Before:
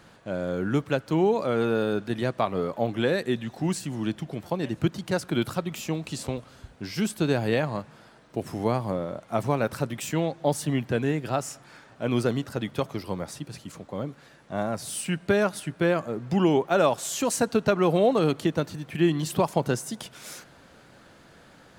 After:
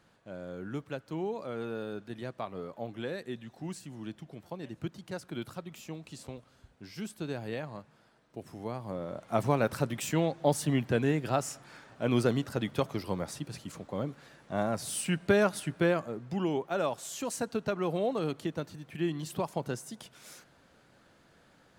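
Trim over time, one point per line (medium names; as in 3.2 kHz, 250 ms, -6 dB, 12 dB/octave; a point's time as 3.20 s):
8.75 s -12.5 dB
9.27 s -2 dB
15.77 s -2 dB
16.33 s -9.5 dB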